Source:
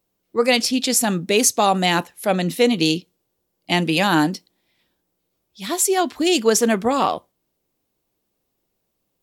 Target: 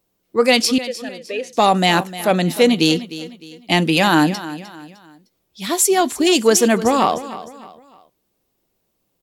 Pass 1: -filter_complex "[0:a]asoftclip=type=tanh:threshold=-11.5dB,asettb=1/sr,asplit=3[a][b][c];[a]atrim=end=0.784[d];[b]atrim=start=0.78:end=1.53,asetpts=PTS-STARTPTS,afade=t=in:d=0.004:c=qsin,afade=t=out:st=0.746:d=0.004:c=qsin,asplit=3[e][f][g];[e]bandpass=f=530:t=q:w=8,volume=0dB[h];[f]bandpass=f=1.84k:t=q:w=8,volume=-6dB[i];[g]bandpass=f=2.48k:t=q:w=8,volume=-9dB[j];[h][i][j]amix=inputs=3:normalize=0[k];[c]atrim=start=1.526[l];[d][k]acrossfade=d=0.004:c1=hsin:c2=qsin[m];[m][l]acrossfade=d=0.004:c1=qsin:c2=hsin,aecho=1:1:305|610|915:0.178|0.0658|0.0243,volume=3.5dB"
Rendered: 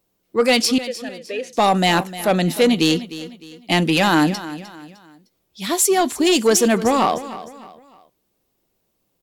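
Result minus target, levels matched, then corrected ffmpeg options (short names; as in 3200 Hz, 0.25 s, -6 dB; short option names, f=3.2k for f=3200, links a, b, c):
soft clip: distortion +11 dB
-filter_complex "[0:a]asoftclip=type=tanh:threshold=-4dB,asettb=1/sr,asplit=3[a][b][c];[a]atrim=end=0.784[d];[b]atrim=start=0.78:end=1.53,asetpts=PTS-STARTPTS,afade=t=in:d=0.004:c=qsin,afade=t=out:st=0.746:d=0.004:c=qsin,asplit=3[e][f][g];[e]bandpass=f=530:t=q:w=8,volume=0dB[h];[f]bandpass=f=1.84k:t=q:w=8,volume=-6dB[i];[g]bandpass=f=2.48k:t=q:w=8,volume=-9dB[j];[h][i][j]amix=inputs=3:normalize=0[k];[c]atrim=start=1.526[l];[d][k]acrossfade=d=0.004:c1=hsin:c2=qsin[m];[m][l]acrossfade=d=0.004:c1=qsin:c2=hsin,aecho=1:1:305|610|915:0.178|0.0658|0.0243,volume=3.5dB"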